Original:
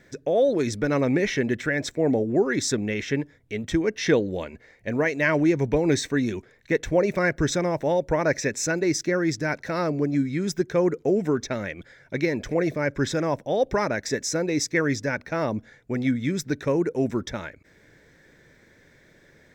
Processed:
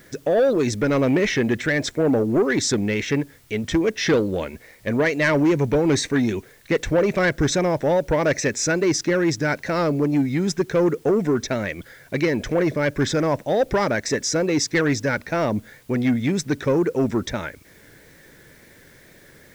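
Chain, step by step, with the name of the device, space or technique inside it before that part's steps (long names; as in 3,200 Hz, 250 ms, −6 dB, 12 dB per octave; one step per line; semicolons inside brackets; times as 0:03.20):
compact cassette (soft clipping −18 dBFS, distortion −15 dB; low-pass filter 8,900 Hz; tape wow and flutter; white noise bed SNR 35 dB)
level +5.5 dB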